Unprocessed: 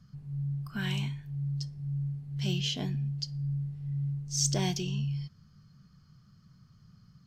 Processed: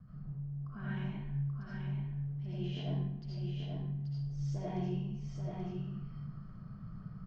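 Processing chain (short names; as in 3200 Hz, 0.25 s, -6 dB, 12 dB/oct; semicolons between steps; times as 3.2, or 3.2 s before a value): LPF 1200 Hz 12 dB/oct; reverse; compressor 6:1, threshold -46 dBFS, peak gain reduction 18.5 dB; reverse; vibrato 0.61 Hz 7.9 cents; echo 0.833 s -4.5 dB; digital reverb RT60 0.74 s, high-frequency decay 0.85×, pre-delay 40 ms, DRR -9 dB; gain +3 dB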